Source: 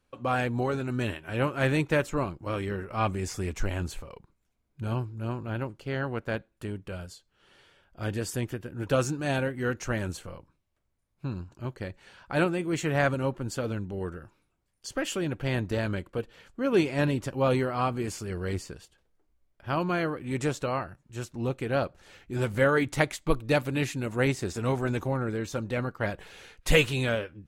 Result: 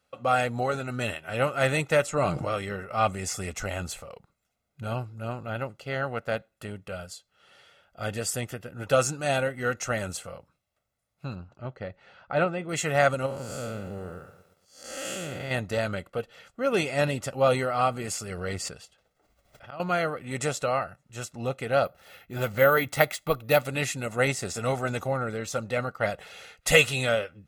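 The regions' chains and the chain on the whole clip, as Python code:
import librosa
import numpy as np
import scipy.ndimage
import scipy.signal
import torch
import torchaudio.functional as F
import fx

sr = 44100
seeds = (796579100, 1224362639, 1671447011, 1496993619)

y = fx.chain(x, sr, fx.lowpass(hz=11000.0, slope=24),
    fx.comb(ms=6.6, depth=0.33),
    fx.sustainer(db_per_s=21.0), at=(2.05, 2.53))
y = fx.chain(y, sr, fx.lowpass(hz=4700.0, slope=12),
    fx.high_shelf(hz=2200.0, db=-8.5), at=(11.35, 12.69))
y = fx.chain(y, sr, fx.spec_blur(span_ms=227.0),
    fx.high_shelf(hz=11000.0, db=6.5),
    fx.echo_crushed(ms=116, feedback_pct=55, bits=10, wet_db=-14), at=(13.26, 15.51))
y = fx.chain(y, sr, fx.peak_eq(hz=12000.0, db=-5.0, octaves=0.89),
    fx.auto_swell(attack_ms=466.0),
    fx.pre_swell(db_per_s=33.0), at=(18.38, 19.8))
y = fx.chain(y, sr, fx.lowpass(hz=5900.0, slope=12),
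    fx.resample_bad(factor=3, down='none', up='hold'), at=(21.85, 23.65))
y = fx.highpass(y, sr, hz=270.0, slope=6)
y = y + 0.6 * np.pad(y, (int(1.5 * sr / 1000.0), 0))[:len(y)]
y = fx.dynamic_eq(y, sr, hz=8300.0, q=1.3, threshold_db=-53.0, ratio=4.0, max_db=5)
y = y * librosa.db_to_amplitude(2.5)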